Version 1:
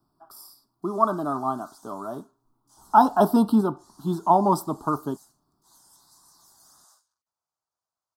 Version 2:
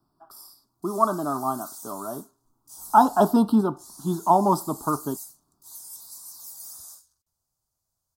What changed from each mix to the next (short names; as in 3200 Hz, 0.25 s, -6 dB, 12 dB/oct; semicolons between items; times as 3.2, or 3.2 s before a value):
background: remove band-pass 1300 Hz, Q 0.76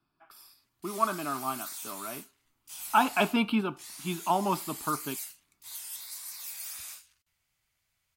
speech -9.0 dB; master: remove Chebyshev band-stop 970–5600 Hz, order 2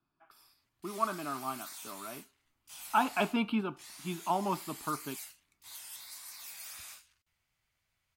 speech -4.0 dB; master: add high shelf 5000 Hz -8 dB